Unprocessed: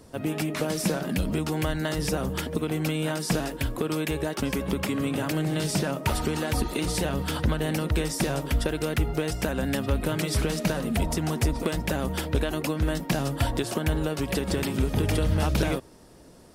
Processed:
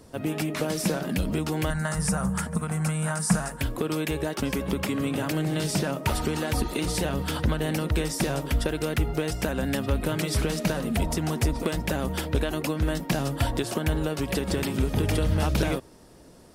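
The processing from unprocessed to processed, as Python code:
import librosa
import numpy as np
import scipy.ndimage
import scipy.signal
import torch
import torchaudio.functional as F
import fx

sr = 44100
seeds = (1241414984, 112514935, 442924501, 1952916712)

y = fx.curve_eq(x, sr, hz=(130.0, 200.0, 290.0, 720.0, 1400.0, 3400.0, 9400.0, 13000.0), db=(0, 8, -15, 0, 5, -11, 10, -8), at=(1.7, 3.61))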